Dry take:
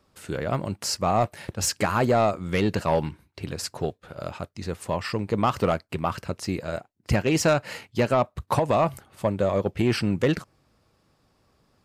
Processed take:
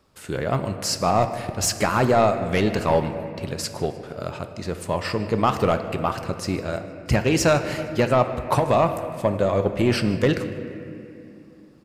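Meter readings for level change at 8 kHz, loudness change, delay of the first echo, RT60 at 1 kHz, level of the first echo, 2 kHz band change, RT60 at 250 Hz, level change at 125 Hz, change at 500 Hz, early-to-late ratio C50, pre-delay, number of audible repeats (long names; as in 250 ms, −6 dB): +3.0 dB, +3.0 dB, 153 ms, 2.3 s, −21.0 dB, +3.0 dB, 3.5 s, +2.5 dB, +3.5 dB, 9.5 dB, 5 ms, 1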